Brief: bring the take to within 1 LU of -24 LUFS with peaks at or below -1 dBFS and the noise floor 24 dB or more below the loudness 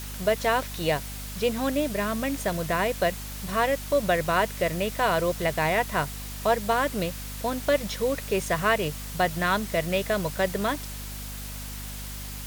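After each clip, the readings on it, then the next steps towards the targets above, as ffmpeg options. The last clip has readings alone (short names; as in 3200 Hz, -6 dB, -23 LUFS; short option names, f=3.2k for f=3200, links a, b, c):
hum 50 Hz; harmonics up to 250 Hz; hum level -36 dBFS; noise floor -37 dBFS; noise floor target -51 dBFS; loudness -27.0 LUFS; peak -9.5 dBFS; loudness target -24.0 LUFS
-> -af "bandreject=f=50:t=h:w=6,bandreject=f=100:t=h:w=6,bandreject=f=150:t=h:w=6,bandreject=f=200:t=h:w=6,bandreject=f=250:t=h:w=6"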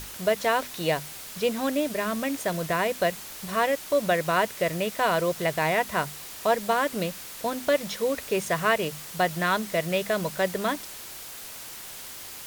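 hum none; noise floor -41 dBFS; noise floor target -51 dBFS
-> -af "afftdn=nr=10:nf=-41"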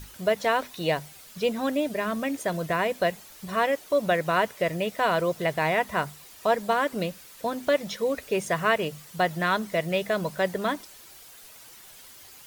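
noise floor -49 dBFS; noise floor target -51 dBFS
-> -af "afftdn=nr=6:nf=-49"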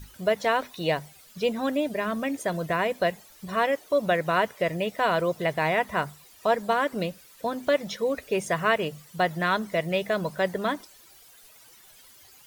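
noise floor -53 dBFS; loudness -27.0 LUFS; peak -10.0 dBFS; loudness target -24.0 LUFS
-> -af "volume=3dB"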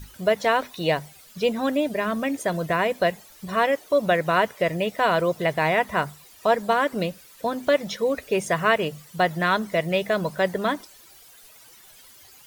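loudness -24.0 LUFS; peak -7.0 dBFS; noise floor -50 dBFS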